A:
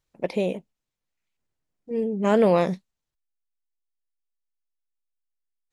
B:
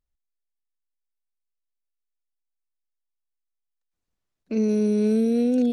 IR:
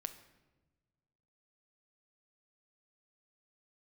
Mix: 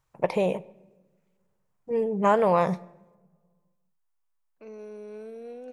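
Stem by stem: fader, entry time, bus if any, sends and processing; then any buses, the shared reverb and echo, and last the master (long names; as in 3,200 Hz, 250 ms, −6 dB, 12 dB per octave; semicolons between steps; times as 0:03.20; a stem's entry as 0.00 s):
−0.5 dB, 0.00 s, send −3.5 dB, downward compressor 5 to 1, threshold −22 dBFS, peak gain reduction 7.5 dB
−16.0 dB, 0.10 s, send −5 dB, bass and treble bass −15 dB, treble −9 dB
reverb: on, RT60 1.2 s, pre-delay 6 ms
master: octave-band graphic EQ 125/250/1,000/4,000 Hz +8/−9/+10/−5 dB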